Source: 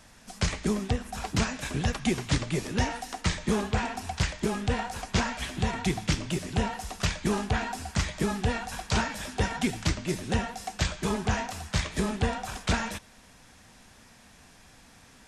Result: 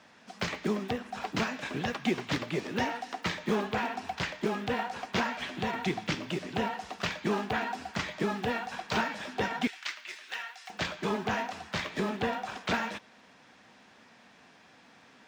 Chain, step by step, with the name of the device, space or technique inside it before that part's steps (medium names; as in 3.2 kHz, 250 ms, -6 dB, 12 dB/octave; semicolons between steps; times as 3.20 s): early digital voice recorder (band-pass 220–3800 Hz; block-companded coder 7-bit); 9.67–10.70 s: Chebyshev high-pass 1.7 kHz, order 2